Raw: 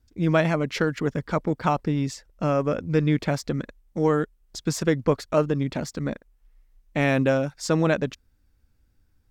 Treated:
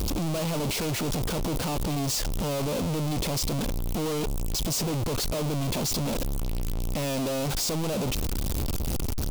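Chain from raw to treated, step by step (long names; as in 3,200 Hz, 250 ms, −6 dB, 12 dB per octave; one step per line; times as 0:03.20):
sign of each sample alone
parametric band 1,700 Hz −12 dB 0.86 octaves
level −1.5 dB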